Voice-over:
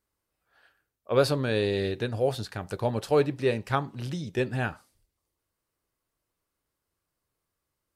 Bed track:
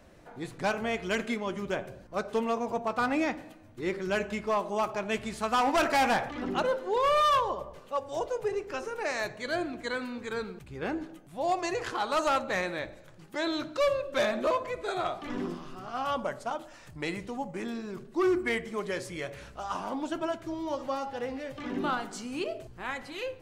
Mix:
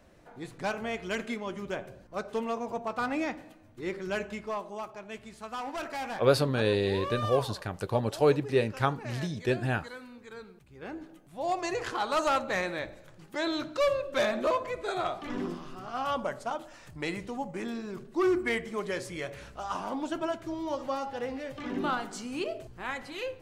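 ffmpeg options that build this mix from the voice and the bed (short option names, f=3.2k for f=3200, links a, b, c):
-filter_complex "[0:a]adelay=5100,volume=-0.5dB[a];[1:a]volume=8dB,afade=t=out:st=4.16:d=0.75:silence=0.398107,afade=t=in:st=10.7:d=1.11:silence=0.281838[b];[a][b]amix=inputs=2:normalize=0"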